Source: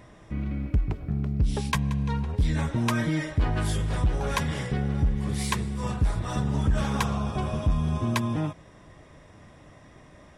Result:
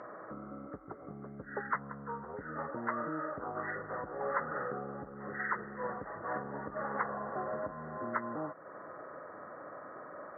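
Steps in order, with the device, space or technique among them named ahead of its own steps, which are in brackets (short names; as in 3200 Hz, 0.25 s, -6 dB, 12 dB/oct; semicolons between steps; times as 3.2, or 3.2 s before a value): hearing aid with frequency lowering (nonlinear frequency compression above 1100 Hz 4:1; compressor 2.5:1, threshold -40 dBFS, peak gain reduction 13.5 dB; speaker cabinet 400–6900 Hz, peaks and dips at 530 Hz +6 dB, 1800 Hz -5 dB, 2700 Hz +6 dB); gain +6 dB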